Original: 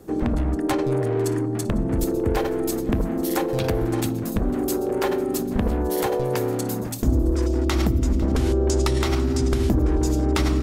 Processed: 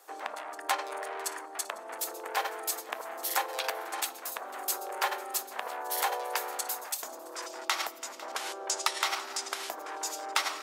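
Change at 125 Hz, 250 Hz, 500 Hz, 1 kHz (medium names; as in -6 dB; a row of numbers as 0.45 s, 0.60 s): under -40 dB, -30.5 dB, -16.5 dB, -1.5 dB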